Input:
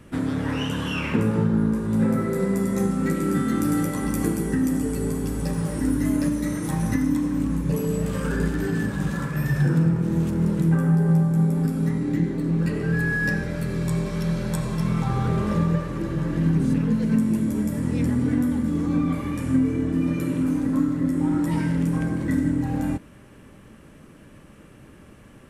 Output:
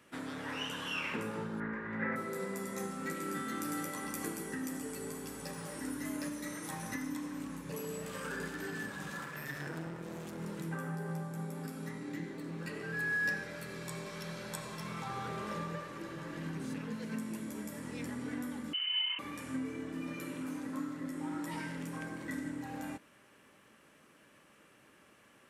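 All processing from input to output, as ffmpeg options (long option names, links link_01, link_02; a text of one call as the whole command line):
ffmpeg -i in.wav -filter_complex "[0:a]asettb=1/sr,asplit=3[link_01][link_02][link_03];[link_01]atrim=end=1.604[link_04];[link_02]atrim=start=1.6:end=2.16,asetpts=PTS-STARTPTS,afade=type=in:duration=0.004:curve=qsin,afade=type=out:start_time=0.556:duration=0.004:curve=qsin,lowpass=frequency=1900:width_type=q:width=6.4,equalizer=frequency=70:width_type=o:width=0.66:gain=7.5[link_05];[link_03]atrim=start=2.156[link_06];[link_04][link_05]acrossfade=duration=0.004:curve1=hsin:curve2=qsin[link_07];[link_07][link_06]acrossfade=duration=0.004:curve1=qsin:curve2=hsin,asettb=1/sr,asplit=3[link_08][link_09][link_10];[link_08]atrim=end=9.214[link_11];[link_09]atrim=start=9.21:end=10.39,asetpts=PTS-STARTPTS,afade=type=in:duration=0.004:curve=qsin,afade=type=out:start_time=1.176:duration=0.004:curve=qsin,highpass=49,aeval=exprs='clip(val(0),-1,0.0398)':channel_layout=same[link_12];[link_10]atrim=start=10.386[link_13];[link_11][link_12]acrossfade=duration=0.004:curve1=hsin:curve2=qsin[link_14];[link_14][link_13]acrossfade=duration=0.004:curve1=qsin:curve2=hsin,asettb=1/sr,asplit=3[link_15][link_16][link_17];[link_15]atrim=end=18.734[link_18];[link_16]atrim=start=18.73:end=19.19,asetpts=PTS-STARTPTS,afade=type=in:duration=0.004:curve=qsin,afade=type=out:start_time=0.456:duration=0.004:curve=qsin,highpass=frequency=300:width=0.5412,highpass=frequency=300:width=1.3066,lowpass=frequency=2800:width_type=q:width=0.5098,lowpass=frequency=2800:width_type=q:width=0.6013,lowpass=frequency=2800:width_type=q:width=0.9,lowpass=frequency=2800:width_type=q:width=2.563,afreqshift=-3300[link_19];[link_17]atrim=start=19.186[link_20];[link_18][link_19]acrossfade=duration=0.004:curve1=hsin:curve2=qsin[link_21];[link_21][link_20]acrossfade=duration=0.004:curve1=qsin:curve2=hsin,highpass=frequency=1000:poles=1,equalizer=frequency=9600:width_type=o:width=0.77:gain=-2.5,volume=-5.5dB" out.wav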